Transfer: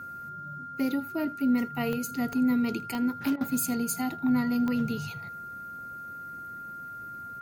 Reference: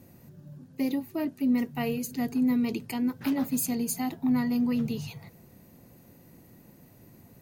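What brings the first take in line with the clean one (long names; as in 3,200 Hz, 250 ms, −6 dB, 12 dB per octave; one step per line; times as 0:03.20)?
click removal
notch filter 1,400 Hz, Q 30
repair the gap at 0:03.36, 47 ms
echo removal 80 ms −22 dB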